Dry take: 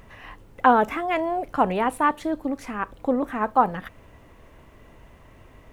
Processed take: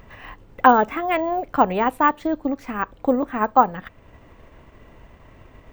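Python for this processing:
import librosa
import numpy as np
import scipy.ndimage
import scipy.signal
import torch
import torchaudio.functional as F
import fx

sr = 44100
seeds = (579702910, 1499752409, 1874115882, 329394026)

y = fx.high_shelf(x, sr, hz=9600.0, db=-11.0)
y = np.repeat(scipy.signal.resample_poly(y, 1, 2), 2)[:len(y)]
y = fx.transient(y, sr, attack_db=2, sustain_db=-4)
y = F.gain(torch.from_numpy(y), 2.5).numpy()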